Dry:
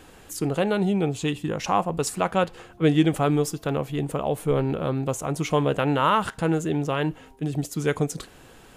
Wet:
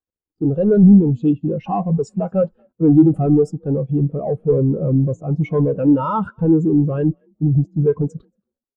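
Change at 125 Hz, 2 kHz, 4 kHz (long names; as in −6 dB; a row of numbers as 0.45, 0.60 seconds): +9.5 dB, below −10 dB, below −15 dB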